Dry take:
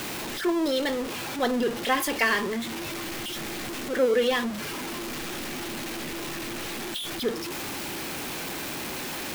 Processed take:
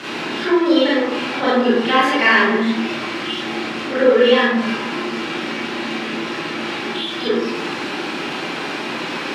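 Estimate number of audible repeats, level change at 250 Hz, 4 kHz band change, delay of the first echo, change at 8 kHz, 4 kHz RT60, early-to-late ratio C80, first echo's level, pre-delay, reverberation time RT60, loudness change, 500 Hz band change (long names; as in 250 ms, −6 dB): no echo audible, +11.0 dB, +9.0 dB, no echo audible, −4.5 dB, 0.50 s, 2.5 dB, no echo audible, 26 ms, 0.90 s, +10.0 dB, +10.0 dB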